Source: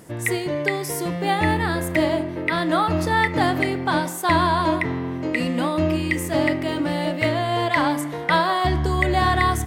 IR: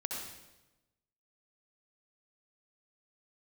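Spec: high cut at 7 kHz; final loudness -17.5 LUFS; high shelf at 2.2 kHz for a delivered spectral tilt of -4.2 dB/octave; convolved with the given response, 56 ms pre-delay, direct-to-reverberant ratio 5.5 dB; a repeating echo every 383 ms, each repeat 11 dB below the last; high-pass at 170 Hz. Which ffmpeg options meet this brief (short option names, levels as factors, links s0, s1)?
-filter_complex "[0:a]highpass=170,lowpass=7000,highshelf=f=2200:g=6,aecho=1:1:383|766|1149:0.282|0.0789|0.0221,asplit=2[s0][s1];[1:a]atrim=start_sample=2205,adelay=56[s2];[s1][s2]afir=irnorm=-1:irlink=0,volume=0.422[s3];[s0][s3]amix=inputs=2:normalize=0,volume=1.26"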